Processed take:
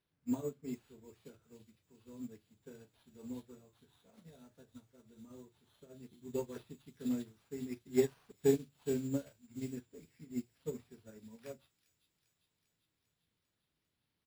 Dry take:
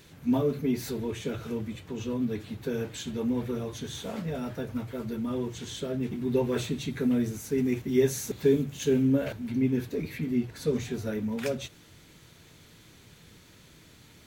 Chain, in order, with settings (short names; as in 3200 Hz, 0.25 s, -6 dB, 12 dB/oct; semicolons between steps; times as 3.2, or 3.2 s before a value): self-modulated delay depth 0.063 ms; sample-and-hold 6×; doubler 36 ms -11.5 dB; thin delay 0.398 s, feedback 70%, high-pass 3400 Hz, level -3.5 dB; upward expander 2.5:1, over -36 dBFS; gain -5 dB